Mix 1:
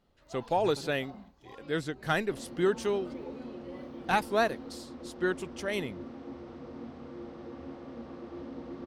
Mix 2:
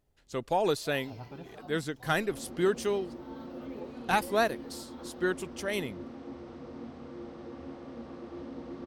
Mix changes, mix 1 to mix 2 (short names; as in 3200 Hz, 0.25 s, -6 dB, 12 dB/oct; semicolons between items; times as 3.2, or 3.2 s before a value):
first sound: entry +0.55 s; master: add high shelf 10000 Hz +11.5 dB